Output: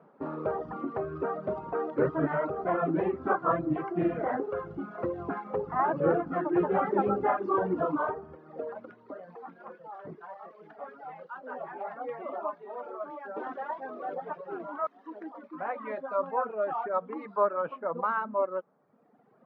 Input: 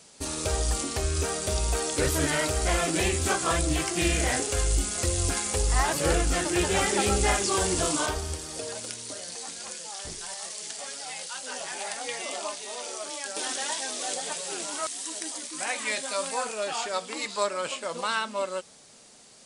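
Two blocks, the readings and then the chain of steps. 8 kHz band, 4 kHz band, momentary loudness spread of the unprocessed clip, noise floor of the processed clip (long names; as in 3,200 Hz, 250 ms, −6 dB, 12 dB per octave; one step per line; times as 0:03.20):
below −40 dB, below −30 dB, 11 LU, −60 dBFS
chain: elliptic band-pass filter 150–1,300 Hz, stop band 70 dB
reverb reduction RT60 1.4 s
level +3 dB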